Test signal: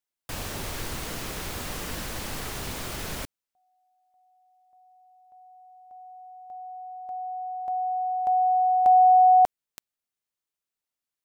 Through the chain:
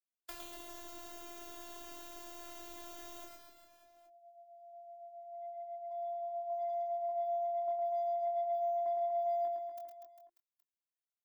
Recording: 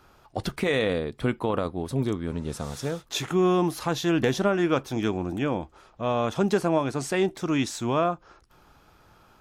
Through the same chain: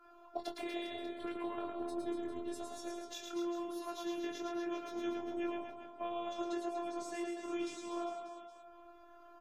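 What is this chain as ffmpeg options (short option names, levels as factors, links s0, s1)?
-filter_complex "[0:a]bandreject=f=64.15:t=h:w=4,bandreject=f=128.3:t=h:w=4,bandreject=f=192.45:t=h:w=4,bandreject=f=256.6:t=h:w=4,bandreject=f=320.75:t=h:w=4,bandreject=f=384.9:t=h:w=4,bandreject=f=449.05:t=h:w=4,bandreject=f=513.2:t=h:w=4,flanger=delay=20:depth=4.5:speed=0.75,bass=f=250:g=-12,treble=f=4000:g=10,acrossover=split=350|1600[s0][s1][s2];[s1]acompressor=threshold=0.01:ratio=2.5:attack=71:release=170:knee=2.83:detection=peak[s3];[s0][s3][s2]amix=inputs=3:normalize=0,afftfilt=real='hypot(re,im)*cos(PI*b)':imag='0':win_size=512:overlap=0.75,acrossover=split=130|1400[s4][s5][s6];[s5]acrusher=bits=4:mode=log:mix=0:aa=0.000001[s7];[s4][s7][s6]amix=inputs=3:normalize=0,acompressor=threshold=0.00501:ratio=6:attack=37:release=642:knee=6:detection=rms,equalizer=f=9300:w=0.35:g=-13,afftdn=nr=17:nf=-67,aecho=1:1:110|242|400.4|590.5|818.6:0.631|0.398|0.251|0.158|0.1,volume=2.37" -ar 48000 -c:a aac -b:a 192k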